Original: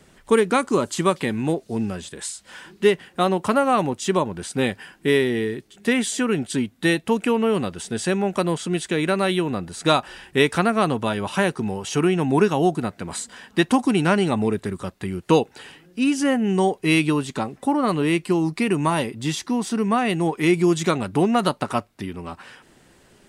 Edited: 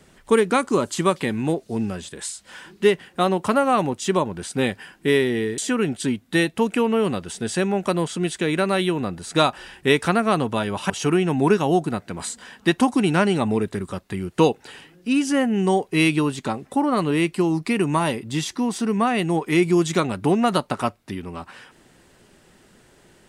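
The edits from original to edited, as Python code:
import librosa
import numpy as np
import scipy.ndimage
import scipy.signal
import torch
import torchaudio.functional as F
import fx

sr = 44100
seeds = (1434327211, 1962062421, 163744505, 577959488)

y = fx.edit(x, sr, fx.cut(start_s=5.58, length_s=0.5),
    fx.cut(start_s=11.4, length_s=0.41), tone=tone)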